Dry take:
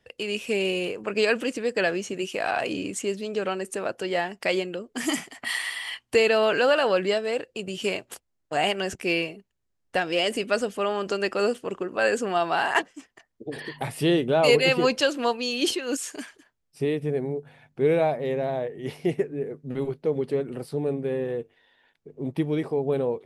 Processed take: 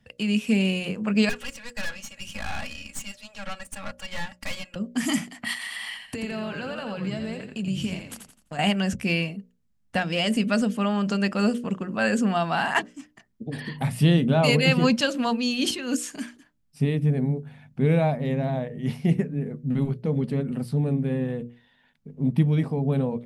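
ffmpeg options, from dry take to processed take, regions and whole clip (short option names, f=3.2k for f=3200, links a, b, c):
-filter_complex "[0:a]asettb=1/sr,asplit=3[a][b][c];[a]atrim=end=1.294[d];[b]atrim=start=1.29:end=4.76,asetpts=PTS-STARTPTS,afade=t=in:d=0.004:c=qsin,afade=t=out:st=3.466:d=0.004:c=qsin,highpass=f=690:w=0.5412,highpass=f=690:w=1.3066,aecho=1:1:3.6:0.93,atrim=end_sample=153027,aeval=exprs='(tanh(28.2*val(0)+0.8)-tanh(0.8))/28.2':c=same[e];[c]atrim=start=4.756[f];[d][e]acrossfade=d=0.004:c1=hsin:c2=qsin[g];[g][f]acrossfade=d=0.004:c1=qsin:c2=hsin,asettb=1/sr,asplit=3[h][i][j];[h]atrim=end=5.534[k];[i]atrim=start=5.53:end=8.59,asetpts=PTS-STARTPTS,afade=t=in:d=0.004:c=qsin,afade=t=out:st=3.056:d=0.004:c=qsin,acompressor=threshold=-31dB:ratio=5:attack=3.2:release=140:knee=1:detection=peak,asplit=5[l][m][n][o][p];[m]adelay=85,afreqshift=-47,volume=-6dB[q];[n]adelay=170,afreqshift=-94,volume=-15.1dB[r];[o]adelay=255,afreqshift=-141,volume=-24.2dB[s];[p]adelay=340,afreqshift=-188,volume=-33.4dB[t];[l][q][r][s][t]amix=inputs=5:normalize=0,atrim=end_sample=134946[u];[j]atrim=start=8.586[v];[k][u]acrossfade=d=0.004:c1=hsin:c2=qsin[w];[w][v]acrossfade=d=0.004:c1=qsin:c2=hsin,lowshelf=f=280:t=q:w=3:g=8,bandreject=f=60:t=h:w=6,bandreject=f=120:t=h:w=6,bandreject=f=180:t=h:w=6,bandreject=f=240:t=h:w=6,bandreject=f=300:t=h:w=6,bandreject=f=360:t=h:w=6,bandreject=f=420:t=h:w=6,bandreject=f=480:t=h:w=6,bandreject=f=540:t=h:w=6,bandreject=f=600:t=h:w=6"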